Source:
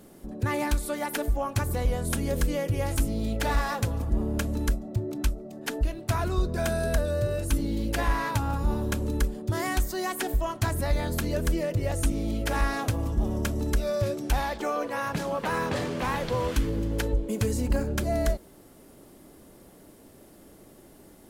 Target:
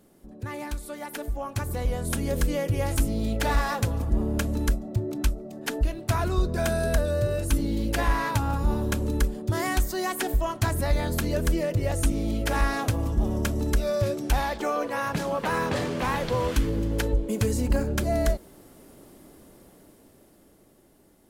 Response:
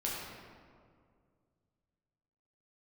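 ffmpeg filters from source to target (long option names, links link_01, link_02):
-af "dynaudnorm=framelen=270:gausssize=13:maxgain=9.5dB,volume=-7.5dB"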